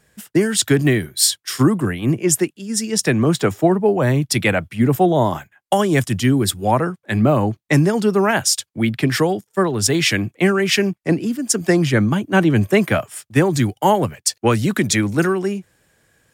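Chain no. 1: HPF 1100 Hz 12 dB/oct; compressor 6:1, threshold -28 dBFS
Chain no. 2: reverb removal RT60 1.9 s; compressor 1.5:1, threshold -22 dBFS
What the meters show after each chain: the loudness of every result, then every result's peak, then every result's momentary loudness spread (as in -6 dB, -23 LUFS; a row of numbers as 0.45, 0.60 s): -32.0, -22.5 LUFS; -13.5, -6.0 dBFS; 5, 5 LU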